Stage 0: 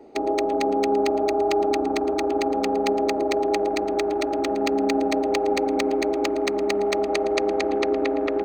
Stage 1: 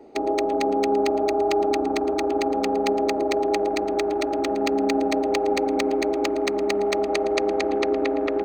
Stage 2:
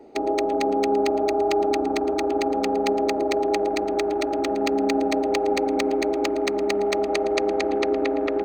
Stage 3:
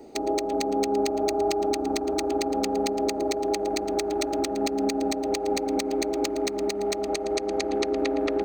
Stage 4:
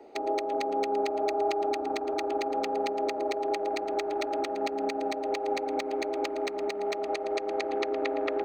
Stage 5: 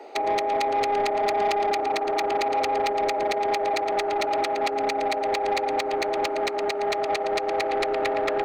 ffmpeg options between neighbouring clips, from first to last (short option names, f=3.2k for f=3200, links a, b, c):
-af anull
-af "bandreject=f=1.1k:w=20"
-af "bass=f=250:g=5,treble=f=4k:g=13,alimiter=limit=-14.5dB:level=0:latency=1:release=353"
-filter_complex "[0:a]acrossover=split=390 3500:gain=0.158 1 0.158[a][b][c];[a][b][c]amix=inputs=3:normalize=0"
-filter_complex "[0:a]highpass=f=340:p=1,asplit=2[a][b];[b]highpass=f=720:p=1,volume=19dB,asoftclip=type=tanh:threshold=-15dB[c];[a][c]amix=inputs=2:normalize=0,lowpass=f=6.6k:p=1,volume=-6dB"